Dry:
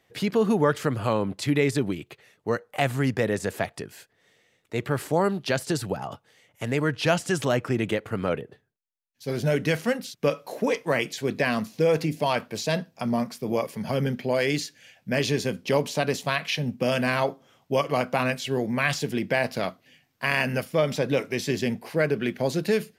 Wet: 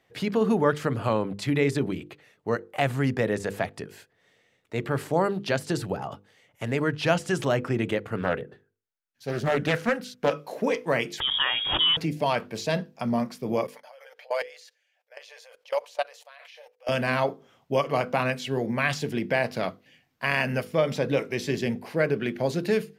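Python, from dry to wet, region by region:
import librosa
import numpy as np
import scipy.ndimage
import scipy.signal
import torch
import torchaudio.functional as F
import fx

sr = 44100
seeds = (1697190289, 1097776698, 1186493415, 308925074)

y = fx.chain(x, sr, fx.peak_eq(hz=1500.0, db=7.5, octaves=0.35),
    fx.doppler_dist(depth_ms=0.39), at=(8.16, 10.37))
y = fx.chain(y, sr, fx.freq_invert(carrier_hz=3500),
    fx.pre_swell(db_per_s=42.0), at=(11.2, 11.97))
y = fx.chain(y, sr, fx.brickwall_highpass(low_hz=460.0),
    fx.level_steps(step_db=24),
    fx.comb(ms=6.8, depth=0.33), at=(13.67, 16.89))
y = fx.high_shelf(y, sr, hz=4600.0, db=-6.5)
y = fx.hum_notches(y, sr, base_hz=50, count=10)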